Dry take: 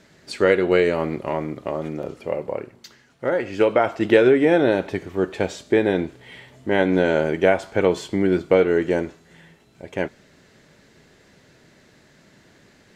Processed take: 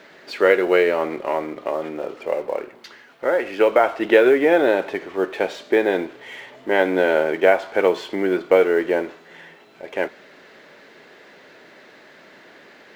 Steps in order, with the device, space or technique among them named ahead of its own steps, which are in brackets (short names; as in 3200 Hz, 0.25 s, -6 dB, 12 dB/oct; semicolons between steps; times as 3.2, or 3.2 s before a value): phone line with mismatched companding (BPF 400–3300 Hz; G.711 law mismatch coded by mu); gain +3 dB